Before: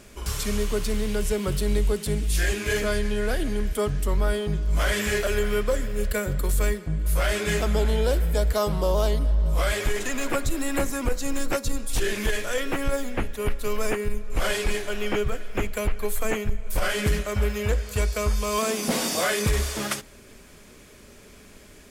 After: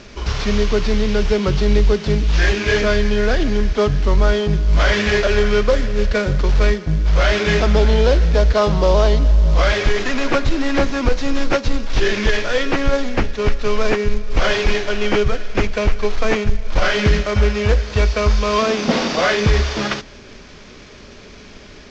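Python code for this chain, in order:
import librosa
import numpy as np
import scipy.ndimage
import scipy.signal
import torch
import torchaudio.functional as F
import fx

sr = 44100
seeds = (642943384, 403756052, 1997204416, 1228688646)

y = fx.cvsd(x, sr, bps=32000)
y = y * librosa.db_to_amplitude(9.0)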